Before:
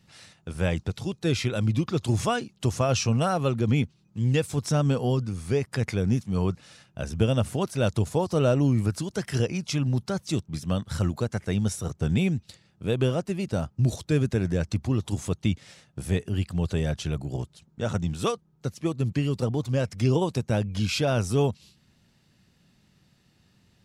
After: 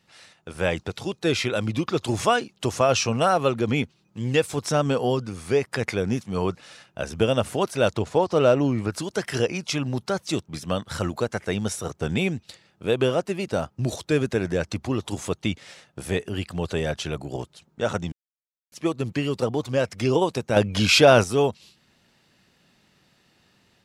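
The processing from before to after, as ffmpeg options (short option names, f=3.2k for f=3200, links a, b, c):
-filter_complex "[0:a]asettb=1/sr,asplit=3[a][b][c];[a]atrim=end=7.944[d];[b]atrim=start=7.94:end=8.92,asetpts=PTS-STARTPTS,afade=t=in:d=0.004:c=qsin,afade=t=out:st=0.976:d=0.004:c=qsin,adynamicsmooth=sensitivity=4.5:basefreq=5.5k[e];[c]atrim=start=8.916[f];[d][e]acrossfade=d=0.004:c1=hsin:c2=qsin[g];[g][f]acrossfade=d=0.004:c1=qsin:c2=hsin,asettb=1/sr,asplit=3[h][i][j];[h]atrim=end=20.564[k];[i]atrim=start=20.56:end=21.24,asetpts=PTS-STARTPTS,afade=t=in:d=0.004:c=qsin,afade=t=out:st=0.676:d=0.004:c=qsin,acontrast=89[l];[j]atrim=start=21.236[m];[k][l]acrossfade=d=0.004:c1=hsin:c2=qsin[n];[n][m]acrossfade=d=0.004:c1=qsin:c2=hsin,asplit=3[o][p][q];[o]atrim=end=18.12,asetpts=PTS-STARTPTS,afade=t=out:st=18.116:d=0.004:c=hsin[r];[p]atrim=start=18.12:end=18.72,asetpts=PTS-STARTPTS,volume=0[s];[q]atrim=start=18.72,asetpts=PTS-STARTPTS,afade=t=in:d=0.004:c=hsin[t];[r][s][t]concat=n=3:v=0:a=1,bass=f=250:g=-12,treble=f=4k:g=-4,dynaudnorm=f=340:g=3:m=5dB,volume=1.5dB"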